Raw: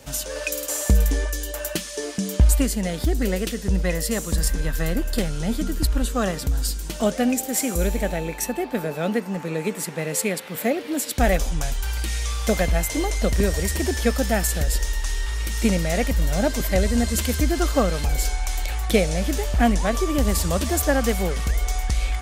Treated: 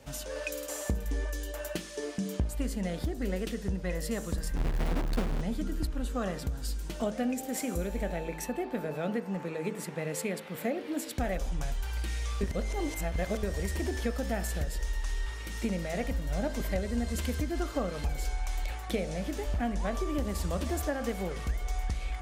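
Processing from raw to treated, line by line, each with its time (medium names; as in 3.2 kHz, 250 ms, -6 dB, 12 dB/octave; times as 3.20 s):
4.56–5.41 s: square wave that keeps the level
12.41–13.43 s: reverse
whole clip: treble shelf 3.5 kHz -9 dB; compression 3:1, threshold -22 dBFS; de-hum 53.82 Hz, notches 34; trim -5.5 dB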